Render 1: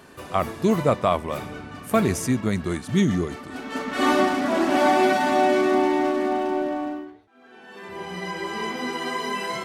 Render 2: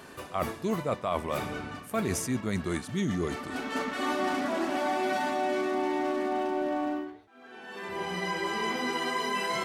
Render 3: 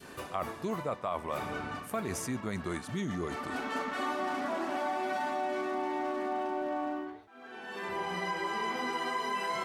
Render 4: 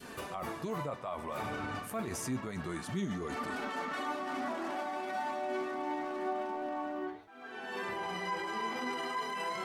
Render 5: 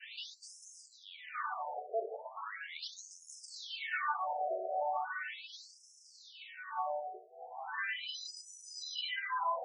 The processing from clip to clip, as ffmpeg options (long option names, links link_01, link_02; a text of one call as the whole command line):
ffmpeg -i in.wav -af "lowshelf=frequency=340:gain=-3.5,areverse,acompressor=threshold=-28dB:ratio=6,areverse,volume=1.5dB" out.wav
ffmpeg -i in.wav -af "adynamicequalizer=threshold=0.00794:dfrequency=1000:dqfactor=0.77:tfrequency=1000:tqfactor=0.77:attack=5:release=100:ratio=0.375:range=3:mode=boostabove:tftype=bell,acompressor=threshold=-34dB:ratio=2.5" out.wav
ffmpeg -i in.wav -af "alimiter=level_in=6.5dB:limit=-24dB:level=0:latency=1:release=15,volume=-6.5dB,flanger=delay=4:depth=6:regen=58:speed=0.3:shape=triangular,volume=5.5dB" out.wav
ffmpeg -i in.wav -filter_complex "[0:a]acrossover=split=120|1900|5000[link_01][link_02][link_03][link_04];[link_03]crystalizer=i=3:c=0[link_05];[link_01][link_02][link_05][link_04]amix=inputs=4:normalize=0,afftfilt=real='re*between(b*sr/1024,530*pow(7400/530,0.5+0.5*sin(2*PI*0.38*pts/sr))/1.41,530*pow(7400/530,0.5+0.5*sin(2*PI*0.38*pts/sr))*1.41)':imag='im*between(b*sr/1024,530*pow(7400/530,0.5+0.5*sin(2*PI*0.38*pts/sr))/1.41,530*pow(7400/530,0.5+0.5*sin(2*PI*0.38*pts/sr))*1.41)':win_size=1024:overlap=0.75,volume=5dB" out.wav